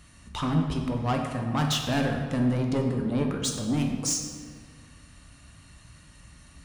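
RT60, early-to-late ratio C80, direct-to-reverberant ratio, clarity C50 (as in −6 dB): 1.9 s, 5.5 dB, 1.5 dB, 4.0 dB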